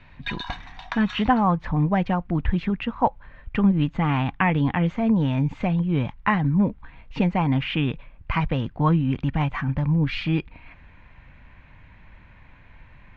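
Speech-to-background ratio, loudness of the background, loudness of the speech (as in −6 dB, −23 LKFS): 13.0 dB, −36.5 LKFS, −23.5 LKFS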